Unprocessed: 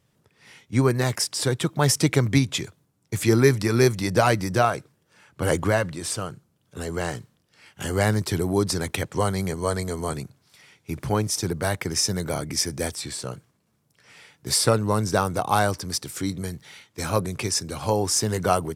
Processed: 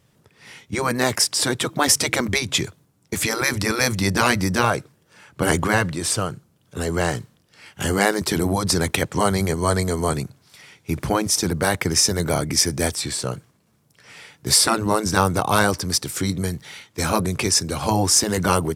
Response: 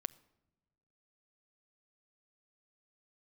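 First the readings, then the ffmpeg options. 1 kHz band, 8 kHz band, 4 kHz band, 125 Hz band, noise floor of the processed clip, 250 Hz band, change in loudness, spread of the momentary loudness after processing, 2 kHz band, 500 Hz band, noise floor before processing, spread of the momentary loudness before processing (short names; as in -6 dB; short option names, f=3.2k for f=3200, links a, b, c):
+3.5 dB, +6.5 dB, +6.5 dB, -0.5 dB, -62 dBFS, +2.5 dB, +3.5 dB, 11 LU, +6.0 dB, +0.5 dB, -68 dBFS, 13 LU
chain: -af "afftfilt=real='re*lt(hypot(re,im),0.447)':imag='im*lt(hypot(re,im),0.447)':win_size=1024:overlap=0.75,volume=6.5dB"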